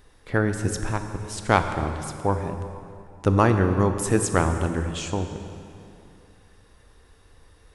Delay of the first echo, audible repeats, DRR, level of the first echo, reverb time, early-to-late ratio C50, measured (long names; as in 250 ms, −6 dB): no echo audible, no echo audible, 7.0 dB, no echo audible, 2.7 s, 8.0 dB